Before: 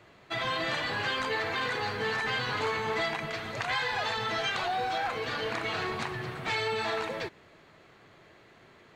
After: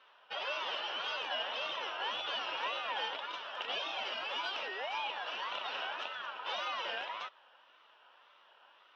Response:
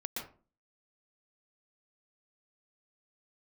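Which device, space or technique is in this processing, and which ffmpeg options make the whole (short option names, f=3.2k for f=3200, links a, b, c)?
voice changer toy: -af "aeval=exprs='val(0)*sin(2*PI*1400*n/s+1400*0.2/1.8*sin(2*PI*1.8*n/s))':c=same,highpass=580,equalizer=f=580:t=q:w=4:g=6,equalizer=f=950:t=q:w=4:g=6,equalizer=f=1.4k:t=q:w=4:g=5,equalizer=f=2.1k:t=q:w=4:g=-8,equalizer=f=2.9k:t=q:w=4:g=8,equalizer=f=4.5k:t=q:w=4:g=-6,lowpass=f=4.7k:w=0.5412,lowpass=f=4.7k:w=1.3066,volume=-5dB"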